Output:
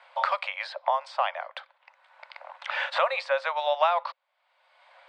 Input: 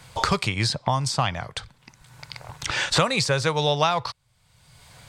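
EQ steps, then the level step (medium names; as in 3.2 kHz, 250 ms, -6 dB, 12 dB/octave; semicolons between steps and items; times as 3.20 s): Chebyshev high-pass 530 Hz, order 8; brick-wall FIR low-pass 9.7 kHz; distance through air 470 m; +2.0 dB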